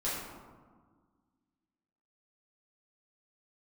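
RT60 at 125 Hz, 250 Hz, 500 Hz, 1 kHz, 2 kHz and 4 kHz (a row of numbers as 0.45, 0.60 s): 1.9, 2.2, 1.6, 1.6, 1.1, 0.65 s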